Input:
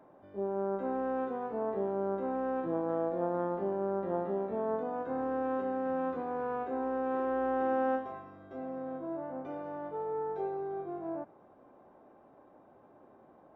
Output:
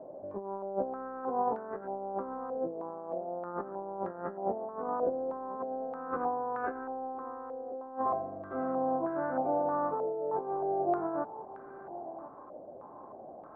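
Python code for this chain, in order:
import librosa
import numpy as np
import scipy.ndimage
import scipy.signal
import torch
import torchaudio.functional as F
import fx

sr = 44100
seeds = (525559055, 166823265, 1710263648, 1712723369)

y = fx.over_compress(x, sr, threshold_db=-38.0, ratio=-0.5)
y = y + 10.0 ** (-15.0 / 20.0) * np.pad(y, (int(1040 * sr / 1000.0), 0))[:len(y)]
y = fx.filter_held_lowpass(y, sr, hz=3.2, low_hz=600.0, high_hz=1500.0)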